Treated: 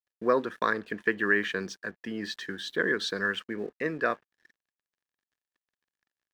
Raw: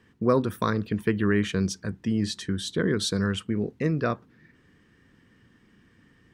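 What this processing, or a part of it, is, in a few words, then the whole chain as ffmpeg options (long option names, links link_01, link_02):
pocket radio on a weak battery: -af "highpass=390,lowpass=4100,aeval=exprs='sgn(val(0))*max(abs(val(0))-0.0015,0)':channel_layout=same,equalizer=frequency=1700:width_type=o:width=0.23:gain=11"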